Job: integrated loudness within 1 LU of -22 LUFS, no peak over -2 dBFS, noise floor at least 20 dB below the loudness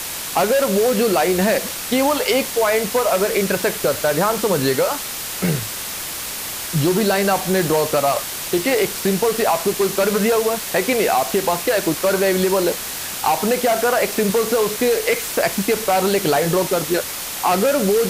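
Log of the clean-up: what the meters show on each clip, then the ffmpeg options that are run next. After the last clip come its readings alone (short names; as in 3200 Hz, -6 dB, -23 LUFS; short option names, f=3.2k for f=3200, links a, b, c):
noise floor -28 dBFS; noise floor target -39 dBFS; loudness -18.5 LUFS; peak -4.5 dBFS; loudness target -22.0 LUFS
-> -af "afftdn=nr=11:nf=-28"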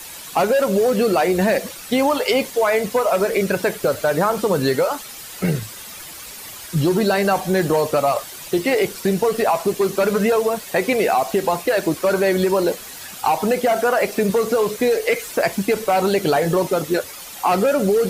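noise floor -36 dBFS; noise floor target -40 dBFS
-> -af "afftdn=nr=6:nf=-36"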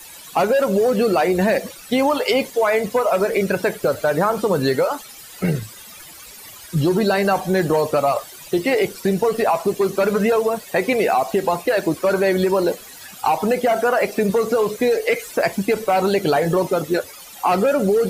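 noise floor -40 dBFS; loudness -19.5 LUFS; peak -6.5 dBFS; loudness target -22.0 LUFS
-> -af "volume=-2.5dB"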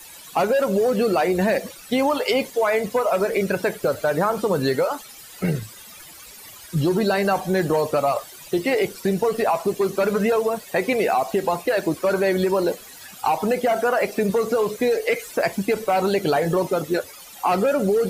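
loudness -22.0 LUFS; peak -9.0 dBFS; noise floor -43 dBFS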